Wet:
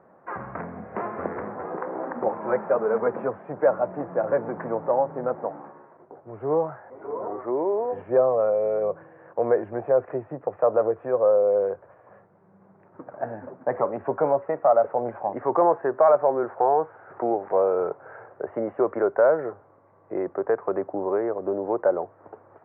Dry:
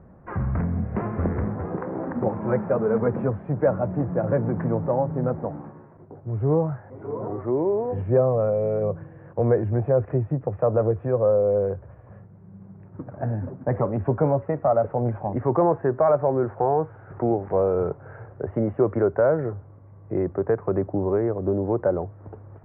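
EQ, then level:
resonant band-pass 640 Hz, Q 0.64
high-frequency loss of the air 280 metres
spectral tilt +4.5 dB per octave
+6.0 dB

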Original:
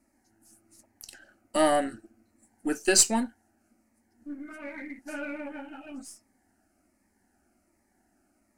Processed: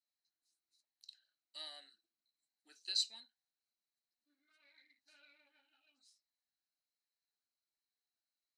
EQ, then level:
resonant band-pass 4,000 Hz, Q 19
+3.0 dB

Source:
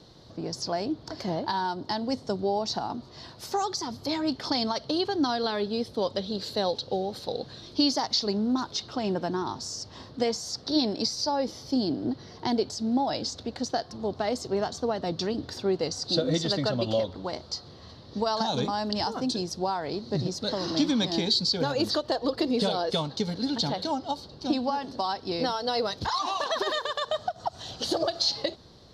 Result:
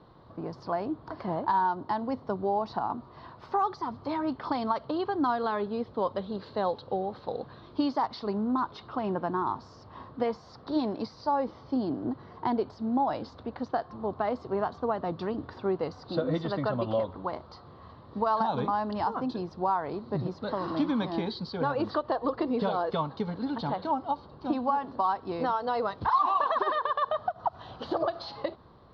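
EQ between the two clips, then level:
low-pass filter 3,800 Hz 6 dB per octave
high-frequency loss of the air 340 metres
parametric band 1,100 Hz +11.5 dB 0.8 octaves
−2.5 dB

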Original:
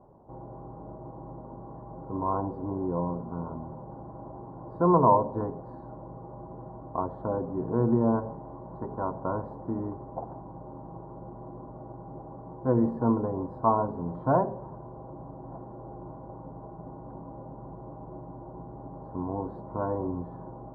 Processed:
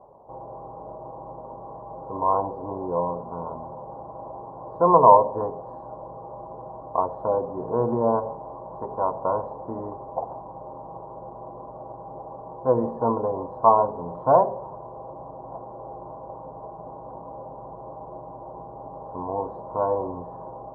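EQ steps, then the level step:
flat-topped bell 720 Hz +12 dB
−4.0 dB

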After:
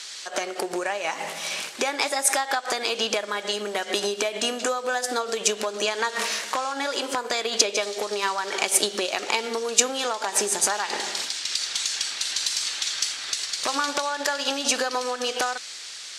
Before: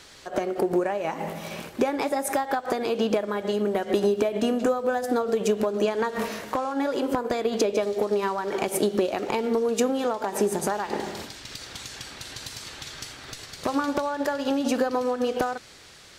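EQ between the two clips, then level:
meter weighting curve ITU-R 468
+2.0 dB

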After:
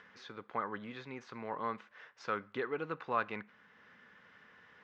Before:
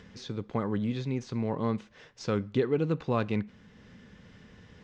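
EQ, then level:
resonant band-pass 1,400 Hz, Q 1.6
+3.5 dB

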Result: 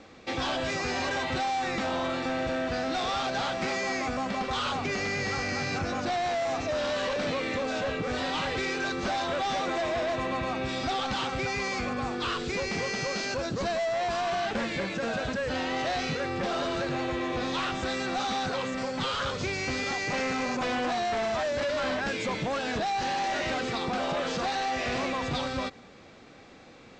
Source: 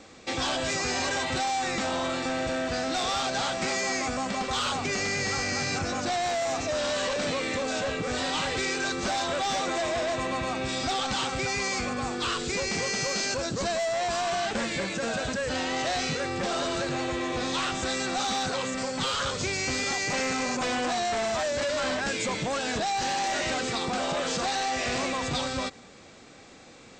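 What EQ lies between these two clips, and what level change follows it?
high-frequency loss of the air 130 metres
0.0 dB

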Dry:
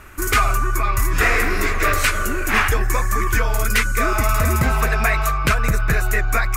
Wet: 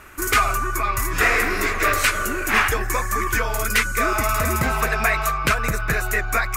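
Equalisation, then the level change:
low-shelf EQ 160 Hz −8 dB
0.0 dB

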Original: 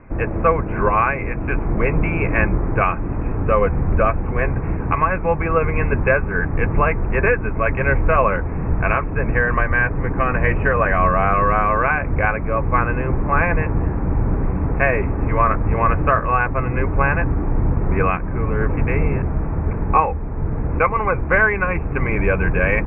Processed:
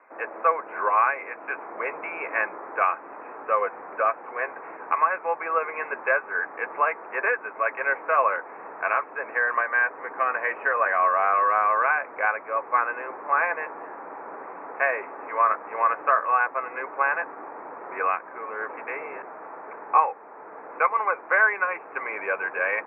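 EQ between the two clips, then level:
high-pass filter 220 Hz 24 dB per octave
three-way crossover with the lows and the highs turned down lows −23 dB, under 470 Hz, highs −19 dB, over 2,100 Hz
low-shelf EQ 470 Hz −10.5 dB
0.0 dB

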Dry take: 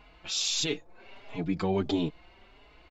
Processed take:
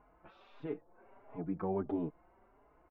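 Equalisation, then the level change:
low-pass filter 1,400 Hz 24 dB per octave
low-shelf EQ 130 Hz −8.5 dB
−5.5 dB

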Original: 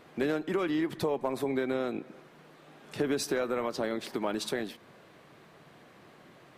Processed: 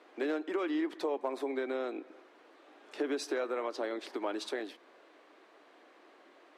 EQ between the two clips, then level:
Chebyshev high-pass filter 290 Hz, order 4
high-frequency loss of the air 53 metres
−2.5 dB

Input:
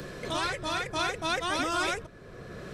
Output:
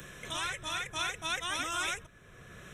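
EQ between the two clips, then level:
Butterworth band-reject 4,600 Hz, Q 2.5
guitar amp tone stack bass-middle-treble 5-5-5
+7.5 dB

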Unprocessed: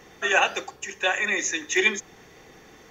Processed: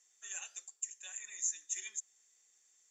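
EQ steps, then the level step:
resonant band-pass 7,400 Hz, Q 16
+6.0 dB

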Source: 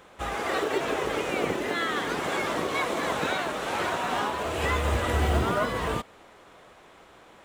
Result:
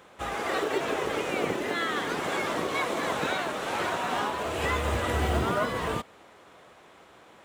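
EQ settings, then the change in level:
high-pass filter 70 Hz
−1.0 dB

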